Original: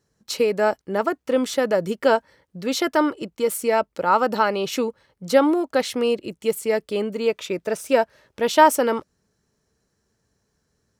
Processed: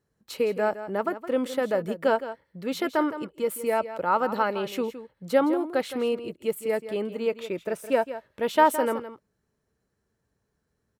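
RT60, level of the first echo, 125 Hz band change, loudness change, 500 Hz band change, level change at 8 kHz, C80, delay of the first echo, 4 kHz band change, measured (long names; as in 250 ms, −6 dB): no reverb audible, −12.5 dB, −5.0 dB, −5.0 dB, −5.0 dB, −10.0 dB, no reverb audible, 165 ms, −9.0 dB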